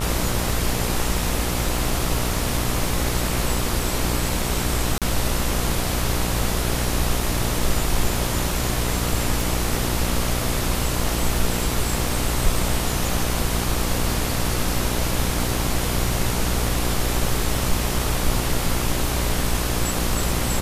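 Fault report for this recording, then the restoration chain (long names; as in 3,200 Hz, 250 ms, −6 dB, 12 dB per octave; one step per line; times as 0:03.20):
mains buzz 60 Hz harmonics 23 −26 dBFS
0:04.98–0:05.02: drop-out 37 ms
0:09.41: click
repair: click removal
hum removal 60 Hz, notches 23
repair the gap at 0:04.98, 37 ms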